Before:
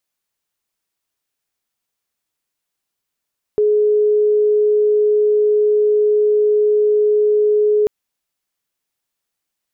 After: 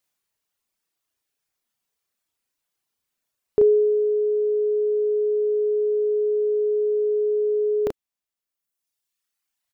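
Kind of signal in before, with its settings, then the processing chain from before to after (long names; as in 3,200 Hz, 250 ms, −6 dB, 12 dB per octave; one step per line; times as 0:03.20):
tone sine 421 Hz −11 dBFS 4.29 s
reverb reduction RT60 1.8 s
double-tracking delay 34 ms −3 dB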